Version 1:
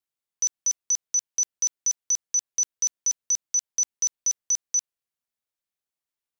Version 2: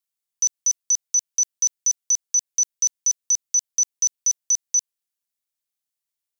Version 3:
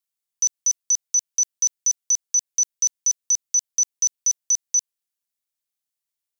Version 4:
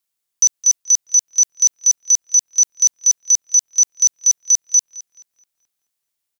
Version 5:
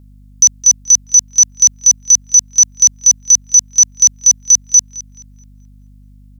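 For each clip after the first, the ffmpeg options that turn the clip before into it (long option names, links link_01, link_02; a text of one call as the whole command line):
ffmpeg -i in.wav -af "highshelf=frequency=2900:gain=11.5,volume=-5.5dB" out.wav
ffmpeg -i in.wav -af anull out.wav
ffmpeg -i in.wav -filter_complex "[0:a]asplit=2[link_01][link_02];[link_02]adelay=215,lowpass=frequency=3200:poles=1,volume=-13dB,asplit=2[link_03][link_04];[link_04]adelay=215,lowpass=frequency=3200:poles=1,volume=0.54,asplit=2[link_05][link_06];[link_06]adelay=215,lowpass=frequency=3200:poles=1,volume=0.54,asplit=2[link_07][link_08];[link_08]adelay=215,lowpass=frequency=3200:poles=1,volume=0.54,asplit=2[link_09][link_10];[link_10]adelay=215,lowpass=frequency=3200:poles=1,volume=0.54,asplit=2[link_11][link_12];[link_12]adelay=215,lowpass=frequency=3200:poles=1,volume=0.54[link_13];[link_01][link_03][link_05][link_07][link_09][link_11][link_13]amix=inputs=7:normalize=0,volume=7dB" out.wav
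ffmpeg -i in.wav -af "aeval=exprs='val(0)+0.00501*(sin(2*PI*50*n/s)+sin(2*PI*2*50*n/s)/2+sin(2*PI*3*50*n/s)/3+sin(2*PI*4*50*n/s)/4+sin(2*PI*5*50*n/s)/5)':channel_layout=same,volume=5.5dB" out.wav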